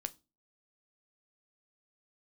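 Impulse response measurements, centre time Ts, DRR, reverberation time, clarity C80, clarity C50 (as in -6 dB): 2 ms, 11.0 dB, 0.30 s, 29.5 dB, 23.0 dB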